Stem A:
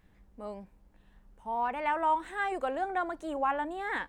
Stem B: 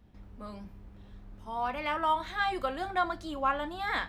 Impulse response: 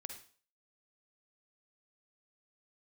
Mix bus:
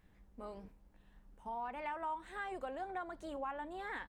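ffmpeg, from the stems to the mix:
-filter_complex "[0:a]volume=0.668,asplit=2[s0][s1];[1:a]acrossover=split=180[s2][s3];[s3]acompressor=threshold=0.0158:ratio=6[s4];[s2][s4]amix=inputs=2:normalize=0,tremolo=f=250:d=0.824,adelay=2.2,volume=0.447[s5];[s1]apad=whole_len=180168[s6];[s5][s6]sidechaingate=range=0.0224:threshold=0.00158:ratio=16:detection=peak[s7];[s0][s7]amix=inputs=2:normalize=0,acompressor=threshold=0.00562:ratio=2"

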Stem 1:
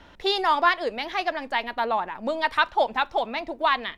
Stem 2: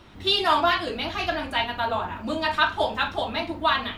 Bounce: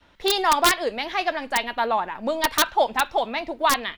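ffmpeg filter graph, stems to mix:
-filter_complex "[0:a]agate=range=0.0224:threshold=0.00708:ratio=3:detection=peak,volume=1.26[s0];[1:a]highpass=f=1500:w=0.5412,highpass=f=1500:w=1.3066,asplit=2[s1][s2];[s2]adelay=4.3,afreqshift=2[s3];[s1][s3]amix=inputs=2:normalize=1,adelay=0.6,volume=0.447[s4];[s0][s4]amix=inputs=2:normalize=0,aeval=exprs='(mod(2.82*val(0)+1,2)-1)/2.82':c=same"

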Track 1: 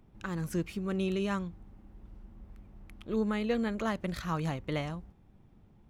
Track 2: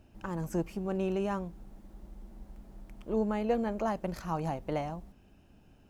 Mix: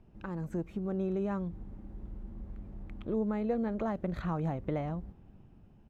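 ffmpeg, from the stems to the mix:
-filter_complex "[0:a]lowpass=f=4700:w=0.5412,lowpass=f=4700:w=1.3066,tiltshelf=f=1300:g=4,dynaudnorm=f=240:g=7:m=2,volume=0.668[s0];[1:a]adelay=0.4,volume=0.376,asplit=2[s1][s2];[s2]apad=whole_len=259950[s3];[s0][s3]sidechaincompress=threshold=0.00316:ratio=4:attack=23:release=174[s4];[s4][s1]amix=inputs=2:normalize=0,highshelf=f=5600:g=-10"

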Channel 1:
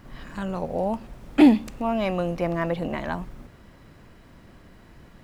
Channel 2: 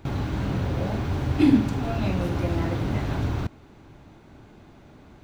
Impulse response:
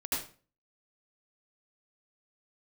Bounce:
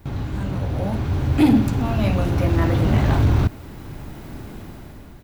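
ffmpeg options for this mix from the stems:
-filter_complex "[0:a]aemphasis=mode=production:type=50fm,volume=0.398[s0];[1:a]adelay=4.4,volume=0.708[s1];[s0][s1]amix=inputs=2:normalize=0,lowshelf=f=160:g=6.5,dynaudnorm=f=290:g=7:m=6.31,asoftclip=type=tanh:threshold=0.398"

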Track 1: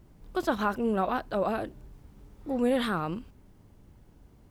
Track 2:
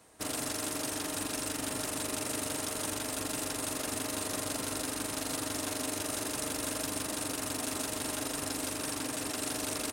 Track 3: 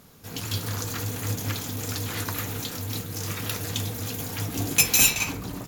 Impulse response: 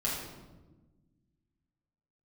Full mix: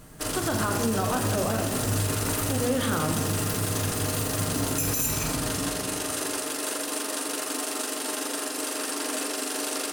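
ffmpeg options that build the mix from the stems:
-filter_complex "[0:a]bandreject=f=60:t=h:w=6,bandreject=f=120:t=h:w=6,bandreject=f=180:t=h:w=6,bandreject=f=240:t=h:w=6,bandreject=f=300:t=h:w=6,bandreject=f=360:t=h:w=6,bandreject=f=420:t=h:w=6,bandreject=f=480:t=h:w=6,volume=1,asplit=2[s0][s1];[s1]volume=0.447[s2];[1:a]highpass=f=280:w=0.5412,highpass=f=280:w=1.3066,alimiter=level_in=1.19:limit=0.0631:level=0:latency=1:release=111,volume=0.841,volume=1.33,asplit=2[s3][s4];[s4]volume=0.562[s5];[2:a]equalizer=f=3100:w=1.1:g=-13.5,volume=0.531,asplit=2[s6][s7];[s7]volume=0.668[s8];[3:a]atrim=start_sample=2205[s9];[s2][s5][s8]amix=inputs=3:normalize=0[s10];[s10][s9]afir=irnorm=-1:irlink=0[s11];[s0][s3][s6][s11]amix=inputs=4:normalize=0,alimiter=limit=0.158:level=0:latency=1:release=74"

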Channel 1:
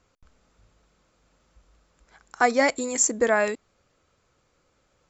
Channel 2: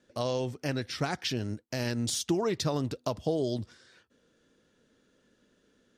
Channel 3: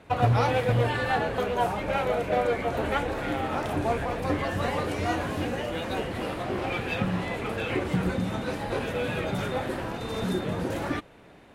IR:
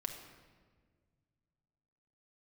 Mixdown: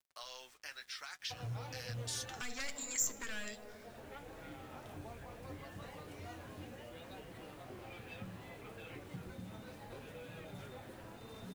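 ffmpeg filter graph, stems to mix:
-filter_complex "[0:a]equalizer=f=4600:w=6.5:g=-5.5,aeval=exprs='clip(val(0),-1,0.0708)':c=same,volume=0.75,asplit=3[s0][s1][s2];[s1]volume=0.316[s3];[1:a]volume=0.631[s4];[2:a]adelay=1200,volume=0.2[s5];[s2]apad=whole_len=561867[s6];[s5][s6]sidechaincompress=threshold=0.0178:ratio=8:attack=16:release=918[s7];[s0][s4]amix=inputs=2:normalize=0,highpass=f=1400:t=q:w=1.5,acompressor=threshold=0.0282:ratio=6,volume=1[s8];[3:a]atrim=start_sample=2205[s9];[s3][s9]afir=irnorm=-1:irlink=0[s10];[s7][s8][s10]amix=inputs=3:normalize=0,acrossover=split=160|3000[s11][s12][s13];[s12]acompressor=threshold=0.00501:ratio=2.5[s14];[s11][s14][s13]amix=inputs=3:normalize=0,acrusher=bits=9:mix=0:aa=0.000001,flanger=delay=6.2:depth=3.3:regen=-51:speed=0.68:shape=sinusoidal"

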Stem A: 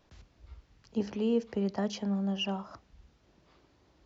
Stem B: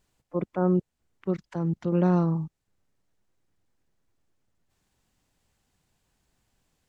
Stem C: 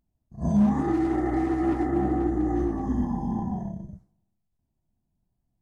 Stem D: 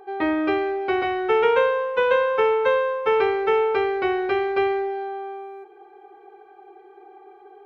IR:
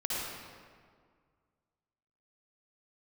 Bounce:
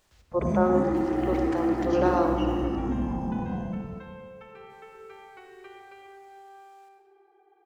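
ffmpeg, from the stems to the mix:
-filter_complex "[0:a]acrusher=bits=7:mode=log:mix=0:aa=0.000001,volume=0.668,asplit=2[s0][s1];[s1]volume=0.237[s2];[1:a]highpass=f=400:w=0.5412,highpass=f=400:w=1.3066,volume=1.41,asplit=2[s3][s4];[s4]volume=0.447[s5];[2:a]asoftclip=type=tanh:threshold=0.1,volume=0.75,asplit=2[s6][s7];[s7]volume=0.266[s8];[3:a]acompressor=threshold=0.0398:ratio=6,adelay=1350,volume=0.168,asplit=2[s9][s10];[s10]volume=0.335[s11];[s0][s9]amix=inputs=2:normalize=0,equalizer=f=200:t=o:w=2.8:g=-14,acompressor=threshold=0.00398:ratio=6,volume=1[s12];[4:a]atrim=start_sample=2205[s13];[s2][s5][s8][s11]amix=inputs=4:normalize=0[s14];[s14][s13]afir=irnorm=-1:irlink=0[s15];[s3][s6][s12][s15]amix=inputs=4:normalize=0"

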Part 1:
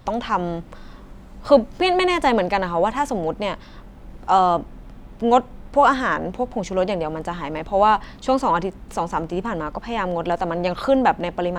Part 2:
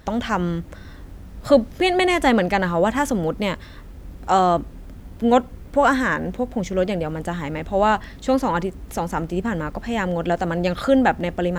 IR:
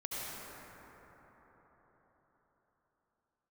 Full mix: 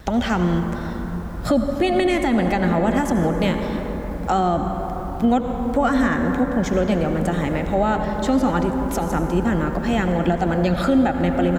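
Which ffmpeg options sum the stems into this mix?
-filter_complex "[0:a]volume=0.316[s0];[1:a]acrossover=split=310[s1][s2];[s2]acompressor=threshold=0.0316:ratio=2[s3];[s1][s3]amix=inputs=2:normalize=0,adelay=1.4,volume=1.33,asplit=2[s4][s5];[s5]volume=0.531[s6];[2:a]atrim=start_sample=2205[s7];[s6][s7]afir=irnorm=-1:irlink=0[s8];[s0][s4][s8]amix=inputs=3:normalize=0,alimiter=limit=0.355:level=0:latency=1:release=133"

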